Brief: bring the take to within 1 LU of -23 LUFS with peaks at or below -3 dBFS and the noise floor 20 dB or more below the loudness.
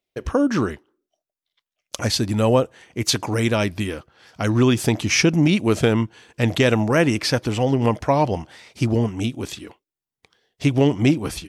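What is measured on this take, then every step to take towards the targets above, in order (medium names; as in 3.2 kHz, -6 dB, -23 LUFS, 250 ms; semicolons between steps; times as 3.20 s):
loudness -20.5 LUFS; peak level -5.5 dBFS; loudness target -23.0 LUFS
-> trim -2.5 dB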